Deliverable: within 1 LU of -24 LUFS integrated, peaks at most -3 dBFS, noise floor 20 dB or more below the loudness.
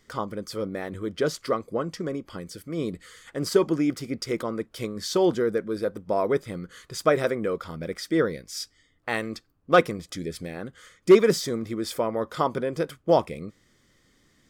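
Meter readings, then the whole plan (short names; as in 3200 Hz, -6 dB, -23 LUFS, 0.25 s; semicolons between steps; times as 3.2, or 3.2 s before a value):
loudness -26.5 LUFS; peak -7.5 dBFS; loudness target -24.0 LUFS
-> gain +2.5 dB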